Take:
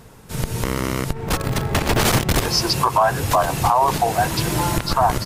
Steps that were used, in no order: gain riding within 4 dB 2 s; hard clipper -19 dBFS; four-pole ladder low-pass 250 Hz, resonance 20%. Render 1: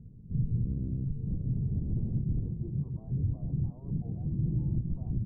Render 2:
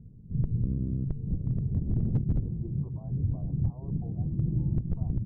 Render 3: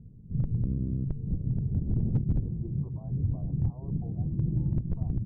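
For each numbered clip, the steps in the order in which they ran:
hard clipper > four-pole ladder low-pass > gain riding; four-pole ladder low-pass > hard clipper > gain riding; four-pole ladder low-pass > gain riding > hard clipper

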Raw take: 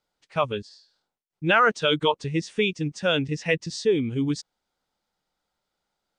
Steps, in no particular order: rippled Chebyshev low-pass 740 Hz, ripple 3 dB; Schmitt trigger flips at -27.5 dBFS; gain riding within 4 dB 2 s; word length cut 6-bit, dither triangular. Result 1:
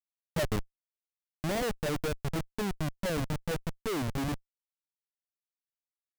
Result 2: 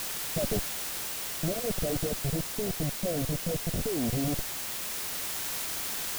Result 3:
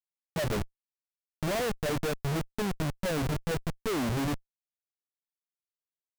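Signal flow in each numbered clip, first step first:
word length cut > rippled Chebyshev low-pass > Schmitt trigger > gain riding; Schmitt trigger > rippled Chebyshev low-pass > word length cut > gain riding; rippled Chebyshev low-pass > gain riding > word length cut > Schmitt trigger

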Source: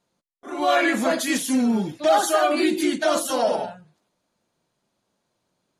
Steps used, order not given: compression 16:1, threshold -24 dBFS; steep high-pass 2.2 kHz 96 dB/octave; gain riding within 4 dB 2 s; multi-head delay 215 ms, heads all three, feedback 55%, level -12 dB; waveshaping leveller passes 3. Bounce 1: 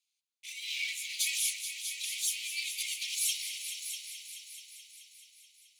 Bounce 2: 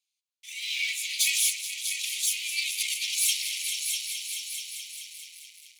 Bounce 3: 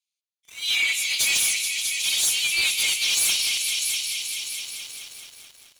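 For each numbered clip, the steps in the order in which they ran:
waveshaping leveller > compression > steep high-pass > gain riding > multi-head delay; compression > multi-head delay > waveshaping leveller > steep high-pass > gain riding; steep high-pass > compression > multi-head delay > gain riding > waveshaping leveller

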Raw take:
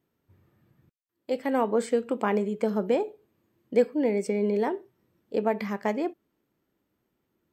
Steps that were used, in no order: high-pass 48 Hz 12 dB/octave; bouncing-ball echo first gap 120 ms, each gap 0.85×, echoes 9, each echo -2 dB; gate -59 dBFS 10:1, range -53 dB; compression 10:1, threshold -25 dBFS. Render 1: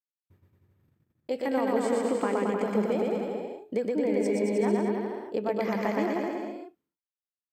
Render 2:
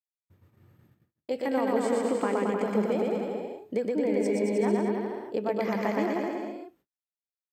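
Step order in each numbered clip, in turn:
high-pass > gate > compression > bouncing-ball echo; compression > bouncing-ball echo > gate > high-pass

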